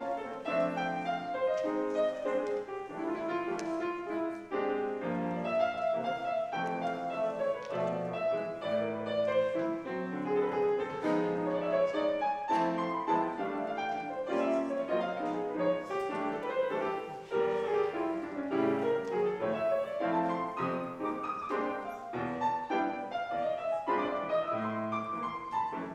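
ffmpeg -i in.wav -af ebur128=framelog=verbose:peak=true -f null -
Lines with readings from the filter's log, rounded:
Integrated loudness:
  I:         -33.0 LUFS
  Threshold: -43.0 LUFS
Loudness range:
  LRA:         2.5 LU
  Threshold: -53.0 LUFS
  LRA low:   -34.1 LUFS
  LRA high:  -31.5 LUFS
True peak:
  Peak:      -16.3 dBFS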